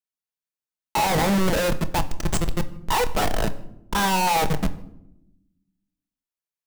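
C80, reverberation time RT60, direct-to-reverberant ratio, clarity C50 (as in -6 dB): 18.5 dB, 0.90 s, 8.5 dB, 16.5 dB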